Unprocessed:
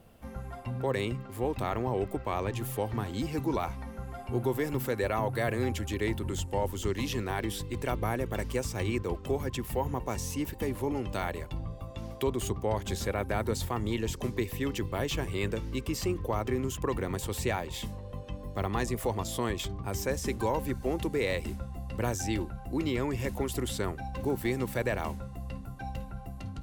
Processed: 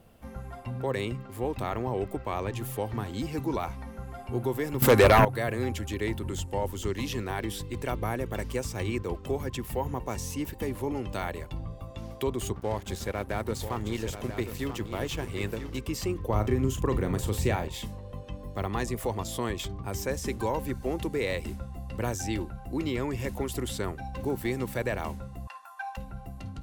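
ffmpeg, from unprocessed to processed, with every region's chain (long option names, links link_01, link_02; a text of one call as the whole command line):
ffmpeg -i in.wav -filter_complex "[0:a]asettb=1/sr,asplit=3[link_01][link_02][link_03];[link_01]atrim=end=4.824[link_04];[link_02]atrim=start=4.82:end=5.25,asetpts=PTS-STARTPTS,afade=type=in:duration=0.004:curve=qsin,afade=type=out:start_time=0.426:duration=0.004:curve=qsin,acontrast=65,aeval=exprs='0.251*sin(PI/2*1.78*val(0)/0.251)':channel_layout=same[link_05];[link_03]atrim=start=5.246[link_06];[link_04][link_05]acrossfade=duration=0.004:curve1=hsin:curve2=qsin[link_07];[link_07][link_06]acrossfade=duration=0.004:curve1=qsin:curve2=hsin,asettb=1/sr,asplit=3[link_08][link_09][link_10];[link_08]atrim=end=12.534[link_11];[link_09]atrim=start=12.53:end=15.79,asetpts=PTS-STARTPTS,afade=type=in:duration=0.004:curve=qsin,afade=type=out:start_time=3.256:duration=0.004:curve=qsin,aecho=1:1:989:0.376,atrim=end_sample=143766,aeval=exprs='sgn(val(0))*max(abs(val(0))-0.00631,0)':channel_layout=same[link_12];[link_10]atrim=start=15.786[link_13];[link_11][link_12]acrossfade=duration=0.004:curve1=hsin:curve2=qsin[link_14];[link_14][link_13]acrossfade=duration=0.004:curve1=qsin:curve2=hsin,asettb=1/sr,asplit=3[link_15][link_16][link_17];[link_15]atrim=end=16.294[link_18];[link_16]atrim=start=16.29:end=17.68,asetpts=PTS-STARTPTS,afade=type=in:duration=0.004:curve=qsin,afade=type=out:start_time=1.386:duration=0.004:curve=qsin,lowshelf=frequency=330:gain=7,asplit=2[link_19][link_20];[link_20]adelay=38,volume=-10.5dB[link_21];[link_19][link_21]amix=inputs=2:normalize=0,atrim=end_sample=61299[link_22];[link_17]atrim=start=17.676[link_23];[link_18][link_22]acrossfade=duration=0.004:curve1=hsin:curve2=qsin[link_24];[link_24][link_23]acrossfade=duration=0.004:curve1=qsin:curve2=hsin,asettb=1/sr,asplit=3[link_25][link_26][link_27];[link_25]atrim=end=25.474[link_28];[link_26]atrim=start=25.47:end=25.97,asetpts=PTS-STARTPTS,afade=type=in:duration=0.004:curve=qsin,afade=type=out:start_time=0.496:duration=0.004:curve=qsin,highpass=frequency=820:width=0.5412,highpass=frequency=820:width=1.3066,equalizer=frequency=1200:width_type=o:width=0.97:gain=11.5,aecho=1:1:1.2:0.59,atrim=end_sample=22050[link_29];[link_27]atrim=start=25.966[link_30];[link_28][link_29]acrossfade=duration=0.004:curve1=hsin:curve2=qsin[link_31];[link_31][link_30]acrossfade=duration=0.004:curve1=qsin:curve2=hsin" out.wav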